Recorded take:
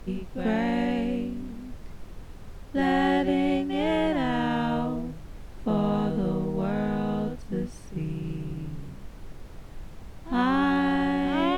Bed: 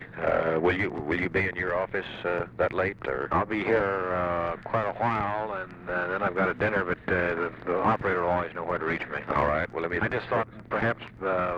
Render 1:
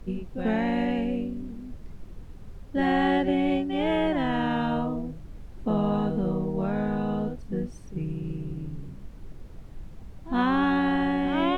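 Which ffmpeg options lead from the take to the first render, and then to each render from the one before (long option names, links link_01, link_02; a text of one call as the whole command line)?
ffmpeg -i in.wav -af "afftdn=noise_reduction=7:noise_floor=-44" out.wav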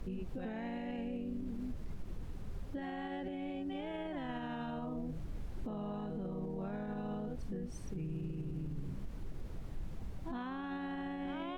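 ffmpeg -i in.wav -af "acompressor=threshold=-32dB:ratio=6,alimiter=level_in=9dB:limit=-24dB:level=0:latency=1:release=51,volume=-9dB" out.wav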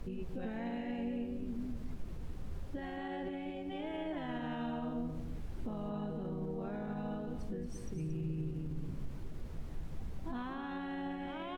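ffmpeg -i in.wav -filter_complex "[0:a]asplit=2[link_01][link_02];[link_02]adelay=13,volume=-11.5dB[link_03];[link_01][link_03]amix=inputs=2:normalize=0,aecho=1:1:227:0.376" out.wav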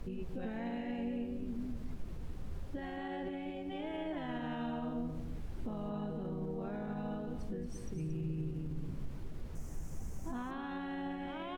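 ffmpeg -i in.wav -filter_complex "[0:a]asettb=1/sr,asplit=3[link_01][link_02][link_03];[link_01]atrim=end=9.554[link_04];[link_02]atrim=start=9.55:end=10.51,asetpts=PTS-STARTPTS,afade=type=in:duration=0.004:curve=qsin,afade=type=out:start_time=0.956:duration=0.004:curve=qsin,highshelf=frequency=5100:width_type=q:width=3:gain=8.5[link_05];[link_03]atrim=start=10.506[link_06];[link_04][link_05]acrossfade=duration=0.004:curve1=hsin:curve2=qsin[link_07];[link_07][link_06]acrossfade=duration=0.004:curve1=qsin:curve2=hsin" out.wav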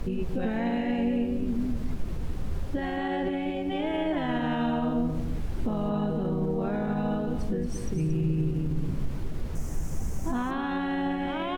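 ffmpeg -i in.wav -af "volume=11.5dB" out.wav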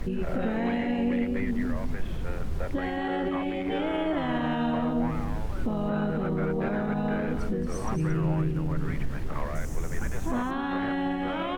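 ffmpeg -i in.wav -i bed.wav -filter_complex "[1:a]volume=-12dB[link_01];[0:a][link_01]amix=inputs=2:normalize=0" out.wav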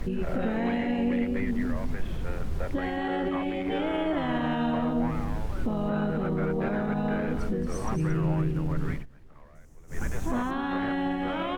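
ffmpeg -i in.wav -filter_complex "[0:a]asplit=3[link_01][link_02][link_03];[link_01]atrim=end=9.06,asetpts=PTS-STARTPTS,afade=type=out:start_time=8.92:duration=0.14:silence=0.0891251[link_04];[link_02]atrim=start=9.06:end=9.87,asetpts=PTS-STARTPTS,volume=-21dB[link_05];[link_03]atrim=start=9.87,asetpts=PTS-STARTPTS,afade=type=in:duration=0.14:silence=0.0891251[link_06];[link_04][link_05][link_06]concat=n=3:v=0:a=1" out.wav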